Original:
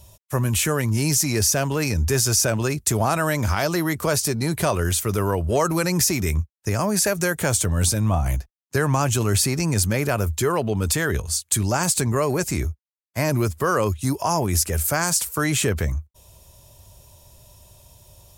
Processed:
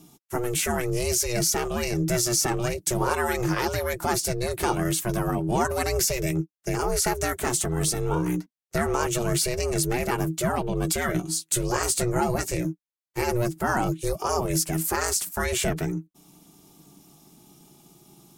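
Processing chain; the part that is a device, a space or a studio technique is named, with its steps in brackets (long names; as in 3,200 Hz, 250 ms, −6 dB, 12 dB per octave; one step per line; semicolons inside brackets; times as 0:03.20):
0:11.02–0:12.55: double-tracking delay 15 ms −8.5 dB
alien voice (ring modulation 240 Hz; flanger 0.12 Hz, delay 4.3 ms, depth 1.5 ms, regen −43%)
level +3 dB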